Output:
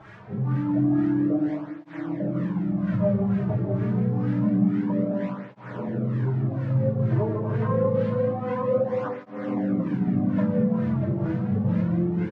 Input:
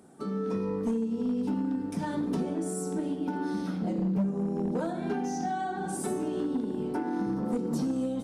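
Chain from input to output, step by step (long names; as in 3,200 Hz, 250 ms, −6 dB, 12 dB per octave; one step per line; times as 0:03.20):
running median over 15 samples
high-shelf EQ 2,200 Hz +7.5 dB
comb filter 6.4 ms, depth 83%
hum removal 116 Hz, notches 4
brickwall limiter −23.5 dBFS, peak gain reduction 5.5 dB
bit-depth reduction 8 bits, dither triangular
auto-filter low-pass sine 3.2 Hz 770–2,600 Hz
change of speed 0.669×
single-tap delay 647 ms −11 dB
on a send at −7 dB: convolution reverb RT60 0.70 s, pre-delay 153 ms
on the sum: through-zero flanger with one copy inverted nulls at 0.27 Hz, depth 4.2 ms
level +6.5 dB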